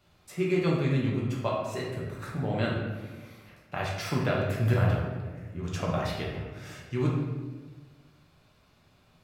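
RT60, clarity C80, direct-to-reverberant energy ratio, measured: 1.4 s, 4.0 dB, -4.0 dB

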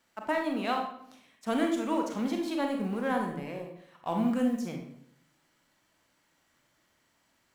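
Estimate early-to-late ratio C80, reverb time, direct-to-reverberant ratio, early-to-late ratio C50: 8.5 dB, 0.70 s, 2.0 dB, 4.5 dB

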